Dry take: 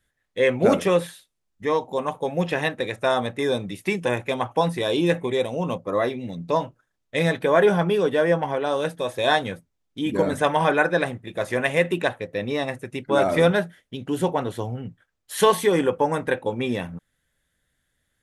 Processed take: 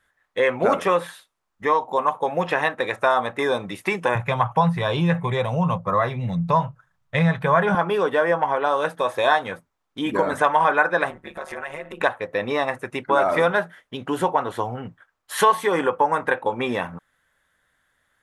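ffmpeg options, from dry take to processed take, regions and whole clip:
ffmpeg -i in.wav -filter_complex "[0:a]asettb=1/sr,asplit=3[link_01][link_02][link_03];[link_01]atrim=end=4.154[link_04];[link_02]atrim=start=4.15:end=7.75,asetpts=PTS-STARTPTS,afade=type=in:duration=0.004:curve=qsin,afade=type=out:start_time=3.596:duration=0.004:curve=qsin,acrossover=split=5000[link_05][link_06];[link_06]acompressor=threshold=-48dB:ratio=4:attack=1:release=60[link_07];[link_05][link_07]amix=inputs=2:normalize=0,lowshelf=frequency=210:width_type=q:width=3:gain=11.5[link_08];[link_03]atrim=start=7.746[link_09];[link_04][link_08]acrossfade=duration=0.004:curve1=hsin:curve2=qsin[link_10];[link_10][link_09]acrossfade=duration=0.004:curve1=qsin:curve2=hsin,asettb=1/sr,asplit=3[link_11][link_12][link_13];[link_11]atrim=end=11.104[link_14];[link_12]atrim=start=11.1:end=12.01,asetpts=PTS-STARTPTS,afade=type=in:duration=0.004:curve=qsin,afade=type=out:start_time=0.906:duration=0.004:curve=qsin,aecho=1:1:5.4:0.83,atrim=end_sample=40131,acompressor=threshold=-31dB:ratio=10:attack=3.2:release=140:knee=1:detection=peak,tremolo=f=150:d=0.857[link_15];[link_13]atrim=start=12.006[link_16];[link_14][link_15]acrossfade=duration=0.004:curve1=hsin:curve2=qsin[link_17];[link_17][link_16]acrossfade=duration=0.004:curve1=qsin:curve2=hsin,equalizer=frequency=1100:width_type=o:width=1.7:gain=14.5,acompressor=threshold=-20dB:ratio=2,lowshelf=frequency=210:gain=-4" out.wav

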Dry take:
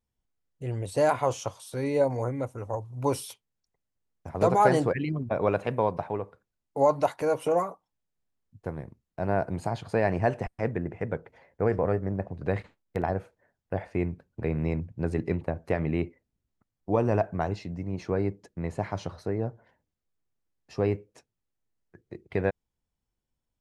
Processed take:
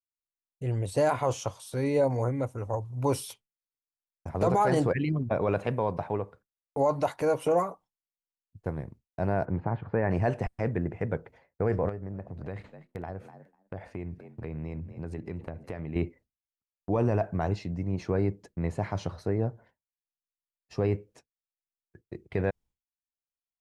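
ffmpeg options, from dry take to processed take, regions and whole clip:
ffmpeg -i in.wav -filter_complex "[0:a]asettb=1/sr,asplit=3[link_01][link_02][link_03];[link_01]atrim=end=9.454[link_04];[link_02]atrim=start=9.45:end=10.11,asetpts=PTS-STARTPTS,afade=type=in:duration=0.004:curve=qsin,afade=type=out:start_time=0.656:duration=0.004:curve=qsin,lowpass=frequency=2000:width=0.5412,lowpass=frequency=2000:width=1.3066,equalizer=frequency=670:width=6.1:gain=-7[link_05];[link_03]atrim=start=10.106[link_06];[link_04][link_05]acrossfade=duration=0.004:curve1=hsin:curve2=qsin[link_07];[link_07][link_06]acrossfade=duration=0.004:curve1=qsin:curve2=hsin,asettb=1/sr,asplit=3[link_08][link_09][link_10];[link_08]atrim=end=11.894[link_11];[link_09]atrim=start=11.89:end=15.96,asetpts=PTS-STARTPTS,afade=type=in:duration=0.004:curve=qsin,afade=type=out:start_time=4.066:duration=0.004:curve=qsin,asplit=4[link_12][link_13][link_14][link_15];[link_13]adelay=247,afreqshift=51,volume=-23dB[link_16];[link_14]adelay=494,afreqshift=102,volume=-31.4dB[link_17];[link_15]adelay=741,afreqshift=153,volume=-39.8dB[link_18];[link_12][link_16][link_17][link_18]amix=inputs=4:normalize=0,atrim=end_sample=179487,acompressor=threshold=-39dB:ratio=2.5:attack=3.2:release=140:knee=1:detection=peak[link_19];[link_10]atrim=start=15.956[link_20];[link_11][link_19]acrossfade=duration=0.004:curve1=hsin:curve2=qsin[link_21];[link_21][link_20]acrossfade=duration=0.004:curve1=qsin:curve2=hsin,agate=range=-33dB:threshold=-49dB:ratio=3:detection=peak,lowshelf=frequency=160:gain=4.5,alimiter=limit=-16dB:level=0:latency=1:release=14" out.wav

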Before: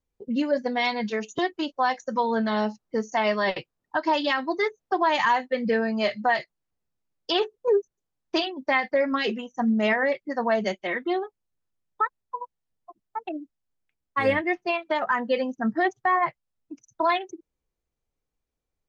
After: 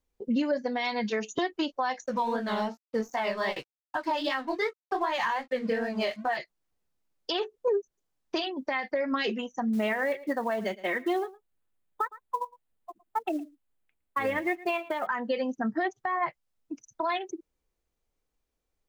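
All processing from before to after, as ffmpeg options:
ffmpeg -i in.wav -filter_complex "[0:a]asettb=1/sr,asplit=3[link_01][link_02][link_03];[link_01]atrim=end=2.064[link_04];[link_02]atrim=start=2.06:end=6.37,asetpts=PTS-STARTPTS,afade=type=in:duration=0.004:curve=qsin,afade=type=out:start_time=4.306:duration=0.004:curve=qsin,aeval=exprs='sgn(val(0))*max(abs(val(0))-0.00473,0)':channel_layout=same,flanger=delay=15:depth=7.6:speed=2.6[link_05];[link_03]atrim=start=6.366[link_06];[link_04][link_05]acrossfade=duration=0.004:curve1=hsin:curve2=qsin[link_07];[link_07][link_06]acrossfade=duration=0.004:curve1=qsin:curve2=hsin,asettb=1/sr,asplit=3[link_08][link_09][link_10];[link_08]atrim=end=9.734[link_11];[link_09]atrim=start=9.73:end=15.07,asetpts=PTS-STARTPTS,afade=type=in:duration=0.004:curve=qsin,afade=type=out:start_time=5.336:duration=0.004:curve=qsin,equalizer=frequency=5500:width_type=o:width=0.46:gain=-14.5,acrusher=bits=7:mode=log:mix=0:aa=0.000001,aecho=1:1:112:0.075,atrim=end_sample=235494[link_12];[link_10]atrim=start=15.066[link_13];[link_11][link_12]acrossfade=duration=0.004:curve1=hsin:curve2=qsin[link_14];[link_14][link_13]acrossfade=duration=0.004:curve1=qsin:curve2=hsin,equalizer=frequency=120:width=1.3:gain=-6,acompressor=threshold=-25dB:ratio=4,alimiter=limit=-21.5dB:level=0:latency=1:release=292,volume=3dB" out.wav

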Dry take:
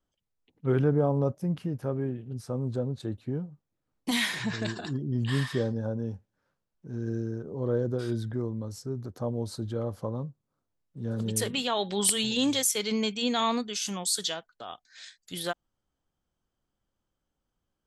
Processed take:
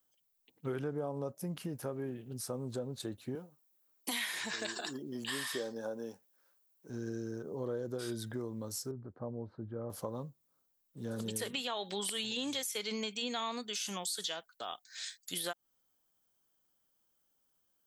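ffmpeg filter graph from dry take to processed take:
ffmpeg -i in.wav -filter_complex "[0:a]asettb=1/sr,asplit=3[link_01][link_02][link_03];[link_01]atrim=end=3.354[link_04];[link_02]atrim=start=3.35:end=6.9,asetpts=PTS-STARTPTS,afade=type=in:duration=0.004:curve=qsin,afade=type=out:start_time=3.546:duration=0.004:curve=qsin,highpass=290,highshelf=frequency=8300:gain=5[link_05];[link_03]atrim=start=6.896[link_06];[link_04][link_05]acrossfade=duration=0.004:curve1=hsin:curve2=qsin[link_07];[link_07][link_06]acrossfade=duration=0.004:curve1=qsin:curve2=hsin,asettb=1/sr,asplit=3[link_08][link_09][link_10];[link_08]atrim=end=8.914[link_11];[link_09]atrim=start=8.91:end=9.9,asetpts=PTS-STARTPTS,afade=type=in:duration=0.004:curve=qsin,afade=type=out:start_time=0.986:duration=0.004:curve=qsin,lowpass=frequency=1600:width=0.5412,lowpass=frequency=1600:width=1.3066,equalizer=frequency=950:width=0.3:gain=-7.5[link_12];[link_10]atrim=start=9.896[link_13];[link_11][link_12]acrossfade=duration=0.004:curve1=hsin:curve2=qsin[link_14];[link_14][link_13]acrossfade=duration=0.004:curve1=qsin:curve2=hsin,acrossover=split=3500[link_15][link_16];[link_16]acompressor=threshold=-42dB:ratio=4:attack=1:release=60[link_17];[link_15][link_17]amix=inputs=2:normalize=0,aemphasis=mode=production:type=bsi,acompressor=threshold=-35dB:ratio=4" out.wav

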